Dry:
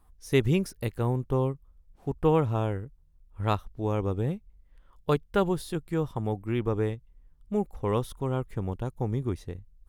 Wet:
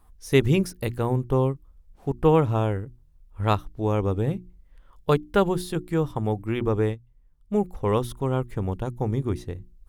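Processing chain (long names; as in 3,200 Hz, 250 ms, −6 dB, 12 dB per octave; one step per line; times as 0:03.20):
mains-hum notches 60/120/180/240/300/360 Hz
0:06.92–0:07.54: expander for the loud parts 1.5 to 1, over −45 dBFS
level +4.5 dB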